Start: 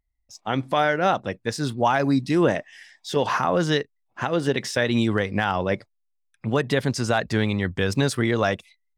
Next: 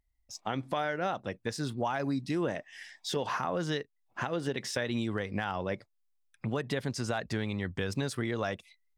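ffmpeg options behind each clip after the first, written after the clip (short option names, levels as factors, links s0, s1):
-af "acompressor=threshold=0.02:ratio=2.5"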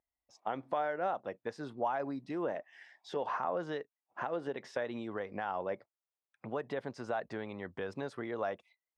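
-af "bandpass=f=720:t=q:w=0.97:csg=0"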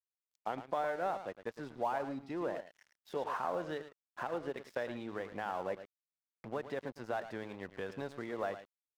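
-af "aecho=1:1:109:0.299,aeval=exprs='sgn(val(0))*max(abs(val(0))-0.00251,0)':c=same,volume=0.891"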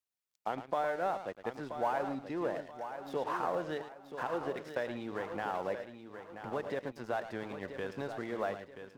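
-af "aecho=1:1:980|1960|2940|3920:0.335|0.124|0.0459|0.017,volume=1.26"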